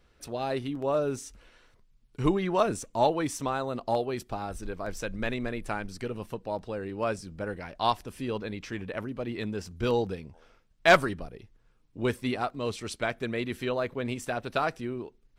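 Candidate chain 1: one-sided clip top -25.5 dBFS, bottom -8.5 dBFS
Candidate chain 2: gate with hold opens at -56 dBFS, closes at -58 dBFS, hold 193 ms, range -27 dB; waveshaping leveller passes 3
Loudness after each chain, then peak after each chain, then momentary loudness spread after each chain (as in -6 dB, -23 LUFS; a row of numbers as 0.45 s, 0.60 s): -32.0 LUFS, -21.5 LUFS; -10.0 dBFS, -7.5 dBFS; 9 LU, 9 LU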